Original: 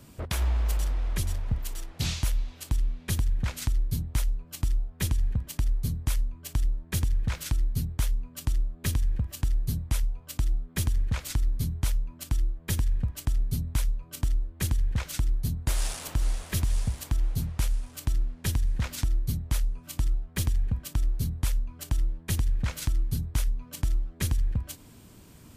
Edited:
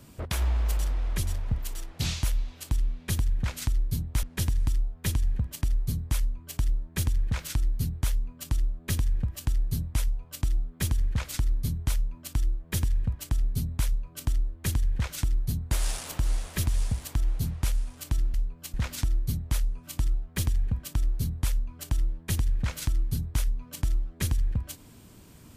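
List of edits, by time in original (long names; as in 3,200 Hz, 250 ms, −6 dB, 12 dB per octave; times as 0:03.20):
0:04.23–0:04.63: swap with 0:18.30–0:18.74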